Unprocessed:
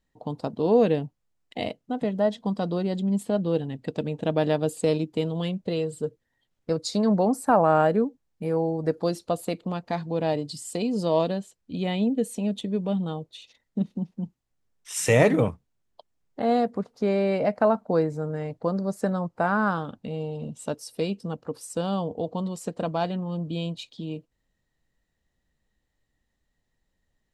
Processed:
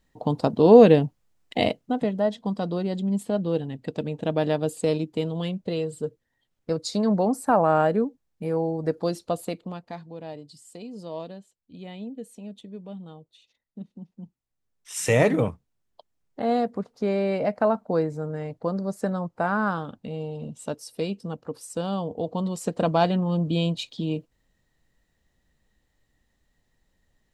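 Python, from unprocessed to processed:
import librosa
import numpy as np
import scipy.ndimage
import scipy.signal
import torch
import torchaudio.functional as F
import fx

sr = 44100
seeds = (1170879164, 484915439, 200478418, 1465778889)

y = fx.gain(x, sr, db=fx.line((1.7, 7.5), (2.19, -0.5), (9.41, -0.5), (10.18, -12.5), (13.91, -12.5), (15.06, -1.0), (22.03, -1.0), (22.92, 6.0)))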